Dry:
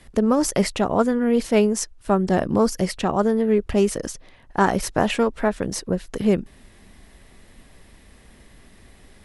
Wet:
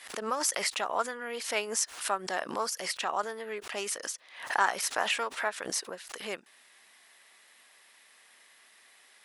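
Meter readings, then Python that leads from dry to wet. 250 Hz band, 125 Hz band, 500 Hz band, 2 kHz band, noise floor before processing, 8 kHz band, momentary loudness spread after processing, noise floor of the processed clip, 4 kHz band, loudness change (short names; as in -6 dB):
-25.5 dB, under -25 dB, -15.0 dB, -1.5 dB, -51 dBFS, -1.5 dB, 11 LU, -60 dBFS, -1.0 dB, -10.0 dB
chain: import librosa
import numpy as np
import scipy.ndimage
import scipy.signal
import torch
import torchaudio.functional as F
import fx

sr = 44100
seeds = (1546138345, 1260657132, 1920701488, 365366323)

y = scipy.signal.sosfilt(scipy.signal.butter(2, 1100.0, 'highpass', fs=sr, output='sos'), x)
y = fx.pre_swell(y, sr, db_per_s=100.0)
y = F.gain(torch.from_numpy(y), -2.0).numpy()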